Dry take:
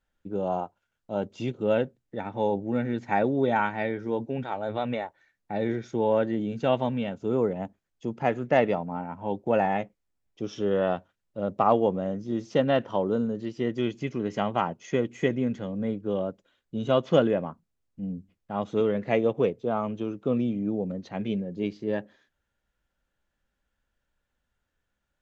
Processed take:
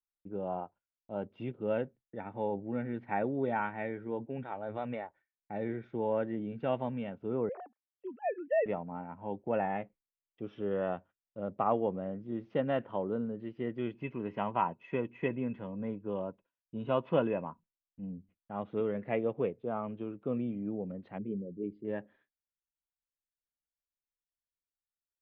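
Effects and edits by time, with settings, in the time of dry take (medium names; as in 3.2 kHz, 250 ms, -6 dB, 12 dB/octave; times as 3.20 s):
7.49–8.66 s: formants replaced by sine waves
13.95–18.10 s: small resonant body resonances 970/2600 Hz, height 14 dB
21.18–21.85 s: resonances exaggerated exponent 2
whole clip: low-pass 2.7 kHz 24 dB/octave; gate with hold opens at -53 dBFS; trim -8 dB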